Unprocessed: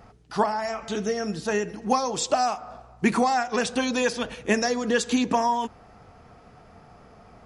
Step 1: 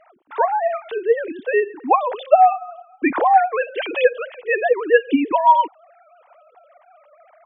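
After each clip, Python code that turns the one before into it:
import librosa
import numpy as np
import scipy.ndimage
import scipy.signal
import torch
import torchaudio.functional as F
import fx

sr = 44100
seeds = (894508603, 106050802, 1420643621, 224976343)

y = fx.sine_speech(x, sr)
y = F.gain(torch.from_numpy(y), 7.0).numpy()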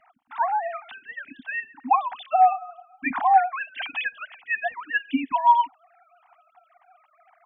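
y = scipy.signal.sosfilt(scipy.signal.ellip(3, 1.0, 40, [260.0, 740.0], 'bandstop', fs=sr, output='sos'), x)
y = F.gain(torch.from_numpy(y), -3.0).numpy()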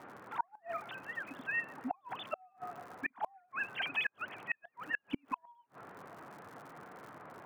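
y = fx.dmg_noise_band(x, sr, seeds[0], low_hz=110.0, high_hz=1500.0, level_db=-47.0)
y = fx.dmg_crackle(y, sr, seeds[1], per_s=110.0, level_db=-41.0)
y = fx.gate_flip(y, sr, shuts_db=-17.0, range_db=-39)
y = F.gain(torch.from_numpy(y), -5.0).numpy()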